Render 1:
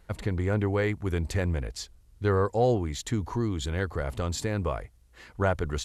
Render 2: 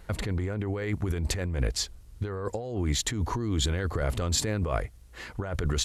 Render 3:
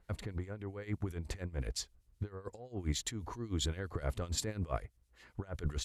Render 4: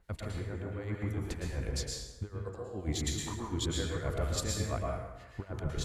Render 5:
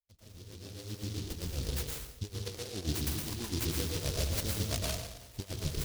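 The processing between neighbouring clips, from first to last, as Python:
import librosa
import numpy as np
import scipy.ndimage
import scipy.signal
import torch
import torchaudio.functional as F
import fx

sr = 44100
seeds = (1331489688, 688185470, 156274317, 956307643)

y1 = fx.over_compress(x, sr, threshold_db=-32.0, ratio=-1.0)
y1 = fx.dynamic_eq(y1, sr, hz=870.0, q=2.5, threshold_db=-48.0, ratio=4.0, max_db=-4)
y1 = y1 * librosa.db_to_amplitude(3.5)
y2 = fx.harmonic_tremolo(y1, sr, hz=7.6, depth_pct=70, crossover_hz=2100.0)
y2 = fx.upward_expand(y2, sr, threshold_db=-47.0, expansion=1.5)
y2 = y2 * librosa.db_to_amplitude(-4.5)
y3 = fx.rev_plate(y2, sr, seeds[0], rt60_s=1.1, hf_ratio=0.65, predelay_ms=100, drr_db=-2.0)
y4 = fx.fade_in_head(y3, sr, length_s=1.65)
y4 = fx.noise_mod_delay(y4, sr, seeds[1], noise_hz=4300.0, depth_ms=0.26)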